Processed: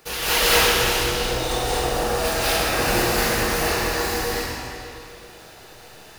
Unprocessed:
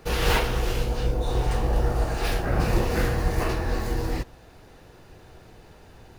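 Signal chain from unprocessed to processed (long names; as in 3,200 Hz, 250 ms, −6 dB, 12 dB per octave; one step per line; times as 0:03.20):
spectral tilt +3 dB per octave
convolution reverb RT60 2.5 s, pre-delay 138 ms, DRR −9.5 dB
level −2.5 dB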